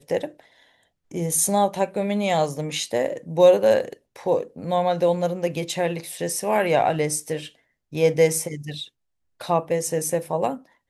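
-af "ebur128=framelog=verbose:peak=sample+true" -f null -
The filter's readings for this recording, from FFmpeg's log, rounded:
Integrated loudness:
  I:         -22.7 LUFS
  Threshold: -33.3 LUFS
Loudness range:
  LRA:         3.4 LU
  Threshold: -42.9 LUFS
  LRA low:   -24.6 LUFS
  LRA high:  -21.2 LUFS
Sample peak:
  Peak:       -5.0 dBFS
True peak:
  Peak:       -5.0 dBFS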